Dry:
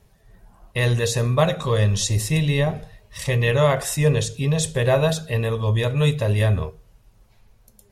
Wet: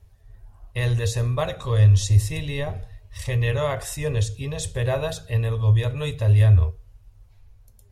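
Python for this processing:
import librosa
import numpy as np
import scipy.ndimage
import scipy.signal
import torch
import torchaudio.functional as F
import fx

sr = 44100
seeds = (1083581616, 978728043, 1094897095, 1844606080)

y = fx.low_shelf_res(x, sr, hz=120.0, db=9.5, q=3.0)
y = y * 10.0 ** (-6.0 / 20.0)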